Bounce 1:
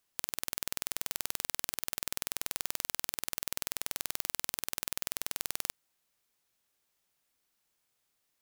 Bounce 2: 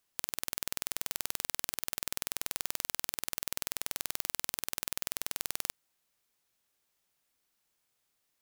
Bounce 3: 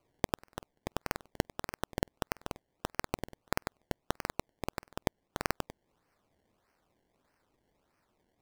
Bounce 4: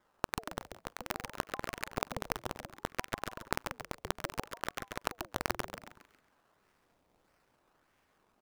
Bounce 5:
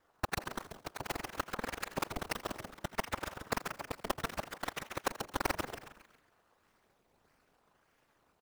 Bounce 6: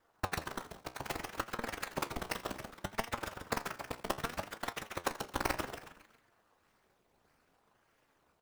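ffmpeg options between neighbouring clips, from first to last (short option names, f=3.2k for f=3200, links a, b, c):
-af anull
-filter_complex "[0:a]acrossover=split=5300[a][b];[b]alimiter=limit=-18.5dB:level=0:latency=1:release=195[c];[a][c]amix=inputs=2:normalize=0,acrusher=samples=24:mix=1:aa=0.000001:lfo=1:lforange=24:lforate=1.6,volume=3.5dB"
-filter_complex "[0:a]acompressor=threshold=-37dB:ratio=1.5,asplit=6[a][b][c][d][e][f];[b]adelay=136,afreqshift=100,volume=-5.5dB[g];[c]adelay=272,afreqshift=200,volume=-13.7dB[h];[d]adelay=408,afreqshift=300,volume=-21.9dB[i];[e]adelay=544,afreqshift=400,volume=-30dB[j];[f]adelay=680,afreqshift=500,volume=-38.2dB[k];[a][g][h][i][j][k]amix=inputs=6:normalize=0,aeval=exprs='val(0)*sin(2*PI*580*n/s+580*0.6/0.63*sin(2*PI*0.63*n/s))':c=same,volume=4.5dB"
-filter_complex "[0:a]afftfilt=real='hypot(re,im)*cos(2*PI*random(0))':imag='hypot(re,im)*sin(2*PI*random(1))':win_size=512:overlap=0.75,aeval=exprs='val(0)*sin(2*PI*120*n/s)':c=same,asplit=4[a][b][c][d];[b]adelay=83,afreqshift=69,volume=-17dB[e];[c]adelay=166,afreqshift=138,volume=-25.4dB[f];[d]adelay=249,afreqshift=207,volume=-33.8dB[g];[a][e][f][g]amix=inputs=4:normalize=0,volume=9.5dB"
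-af "flanger=delay=8.5:depth=8:regen=67:speed=0.64:shape=sinusoidal,volume=4dB"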